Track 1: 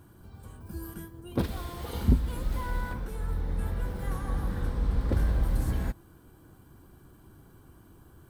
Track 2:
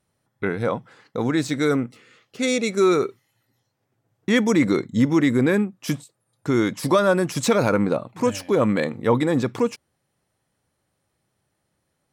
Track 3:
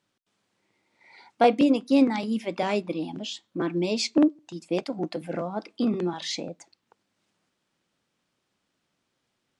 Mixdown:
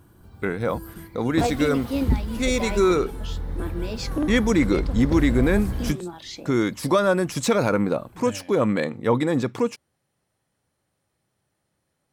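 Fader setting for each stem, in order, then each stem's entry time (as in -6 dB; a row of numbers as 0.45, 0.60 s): +1.0, -1.5, -6.0 dB; 0.00, 0.00, 0.00 s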